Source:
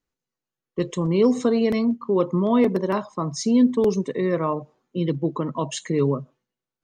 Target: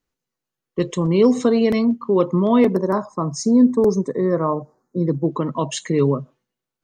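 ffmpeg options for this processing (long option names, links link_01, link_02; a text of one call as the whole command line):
ffmpeg -i in.wav -filter_complex "[0:a]asettb=1/sr,asplit=3[link_01][link_02][link_03];[link_01]atrim=end=2.754[link_04];[link_02]atrim=start=2.75:end=5.31,asetpts=PTS-STARTPTS,afade=type=in:duration=0.004:curve=qsin,afade=type=out:start_time=2.556:duration=0.004:curve=qsin,asuperstop=centerf=2900:order=4:qfactor=0.78[link_05];[link_03]atrim=start=5.306[link_06];[link_04][link_05]acrossfade=duration=0.004:curve1=hsin:curve2=qsin[link_07];[link_07][link_06]acrossfade=duration=0.004:curve1=qsin:curve2=hsin,volume=3.5dB" out.wav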